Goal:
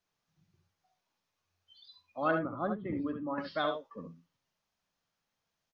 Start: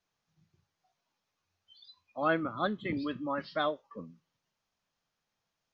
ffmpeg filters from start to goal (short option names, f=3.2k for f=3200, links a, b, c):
-filter_complex "[0:a]asettb=1/sr,asplit=3[a][b][c];[a]atrim=end=2.314[d];[b]atrim=start=2.31:end=3.38,asetpts=PTS-STARTPTS,afade=t=in:d=0.004:c=qsin,afade=t=out:st=1.066:d=0.004:c=qsin,lowpass=1.1k[e];[c]atrim=start=3.376[f];[d][e]acrossfade=d=0.004:c1=hsin:c2=qsin[g];[g][f]acrossfade=d=0.004:c1=qsin:c2=hsin,aecho=1:1:67|78:0.422|0.251,volume=-1.5dB"